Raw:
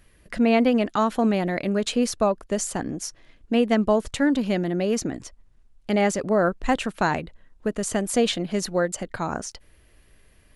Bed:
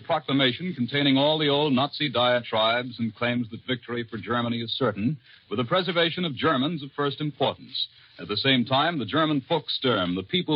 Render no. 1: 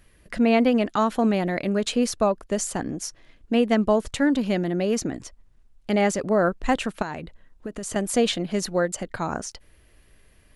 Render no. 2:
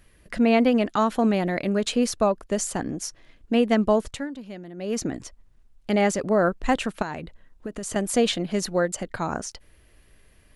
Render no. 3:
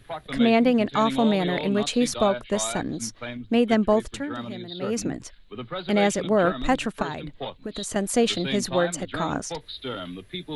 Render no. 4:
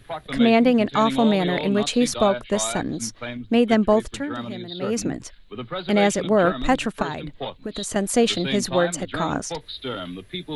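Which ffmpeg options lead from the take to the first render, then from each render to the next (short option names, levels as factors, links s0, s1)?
-filter_complex "[0:a]asettb=1/sr,asplit=3[s0][s1][s2];[s0]atrim=end=7.024[s3];[s1]atrim=start=7.02:end=7.96,asetpts=PTS-STARTPTS,afade=t=in:d=0.004:c=qsin,afade=t=out:st=0.936:d=0.004:c=qsin,acompressor=threshold=0.0398:ratio=6:attack=3.2:release=140:knee=1:detection=peak[s4];[s2]atrim=start=7.956[s5];[s3][s4]acrossfade=d=0.004:c1=hsin:c2=qsin[s6];[s6][s5]acrossfade=d=0.004:c1=qsin:c2=hsin"
-filter_complex "[0:a]asplit=3[s0][s1][s2];[s0]atrim=end=4.28,asetpts=PTS-STARTPTS,afade=t=out:st=4:d=0.28:silence=0.188365[s3];[s1]atrim=start=4.28:end=4.76,asetpts=PTS-STARTPTS,volume=0.188[s4];[s2]atrim=start=4.76,asetpts=PTS-STARTPTS,afade=t=in:d=0.28:silence=0.188365[s5];[s3][s4][s5]concat=n=3:v=0:a=1"
-filter_complex "[1:a]volume=0.335[s0];[0:a][s0]amix=inputs=2:normalize=0"
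-af "volume=1.33"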